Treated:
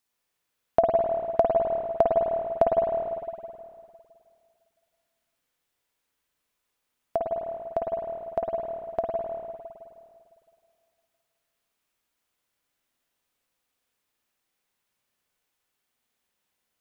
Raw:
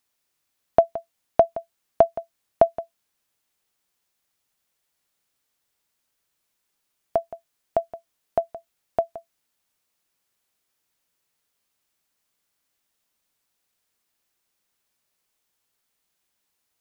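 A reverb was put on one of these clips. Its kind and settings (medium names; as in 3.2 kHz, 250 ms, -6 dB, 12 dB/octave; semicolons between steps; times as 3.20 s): spring tank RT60 2.3 s, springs 51/55 ms, chirp 75 ms, DRR -2.5 dB; trim -4.5 dB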